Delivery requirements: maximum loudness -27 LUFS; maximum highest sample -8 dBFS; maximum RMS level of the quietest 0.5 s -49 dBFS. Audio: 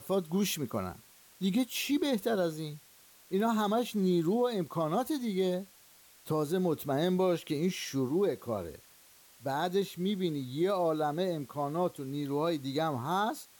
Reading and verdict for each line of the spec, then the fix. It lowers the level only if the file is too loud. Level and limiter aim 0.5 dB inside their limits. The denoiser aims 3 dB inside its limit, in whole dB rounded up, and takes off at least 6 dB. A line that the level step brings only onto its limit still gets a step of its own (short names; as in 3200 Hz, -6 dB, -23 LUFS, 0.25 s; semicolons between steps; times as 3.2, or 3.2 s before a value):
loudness -32.0 LUFS: OK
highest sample -20.0 dBFS: OK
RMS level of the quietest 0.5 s -59 dBFS: OK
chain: none